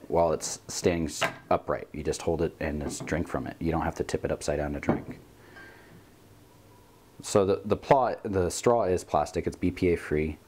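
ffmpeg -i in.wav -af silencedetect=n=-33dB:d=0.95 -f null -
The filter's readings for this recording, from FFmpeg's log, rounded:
silence_start: 5.11
silence_end: 7.20 | silence_duration: 2.09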